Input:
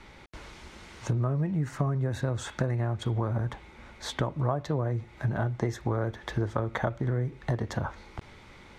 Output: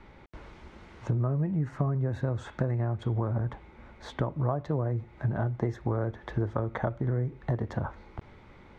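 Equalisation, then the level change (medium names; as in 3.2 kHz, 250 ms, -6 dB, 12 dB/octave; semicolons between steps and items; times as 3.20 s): low-pass 1.2 kHz 6 dB/octave; 0.0 dB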